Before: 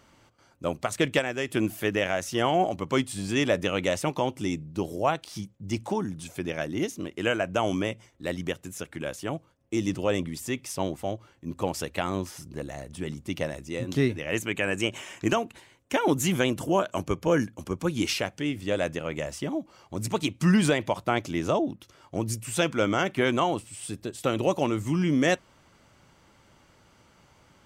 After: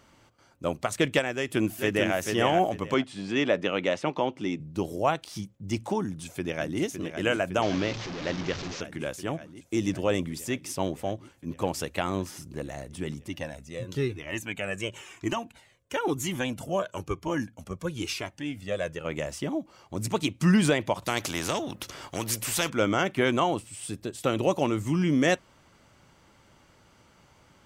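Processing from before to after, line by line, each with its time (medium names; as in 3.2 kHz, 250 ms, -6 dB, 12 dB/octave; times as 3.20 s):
1.34–2.15 s: echo throw 440 ms, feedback 20%, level -4.5 dB
2.94–4.60 s: band-pass 180–4000 Hz
6.04–6.80 s: echo throw 560 ms, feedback 80%, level -8 dB
7.62–8.81 s: one-bit delta coder 32 kbps, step -29.5 dBFS
13.28–19.05 s: Shepard-style flanger falling 1 Hz
21.02–22.70 s: spectrum-flattening compressor 2:1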